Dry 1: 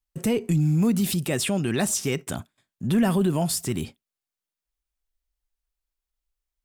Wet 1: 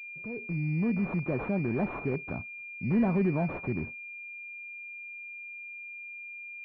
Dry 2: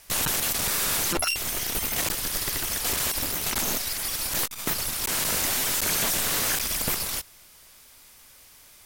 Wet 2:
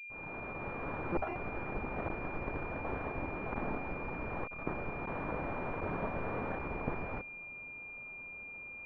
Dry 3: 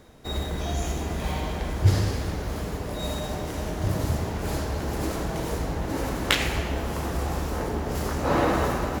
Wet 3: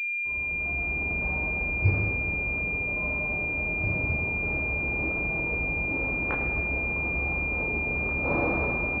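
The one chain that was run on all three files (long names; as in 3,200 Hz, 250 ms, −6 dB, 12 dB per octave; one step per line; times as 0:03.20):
fade in at the beginning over 1.18 s
switching amplifier with a slow clock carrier 2,400 Hz
level −4.5 dB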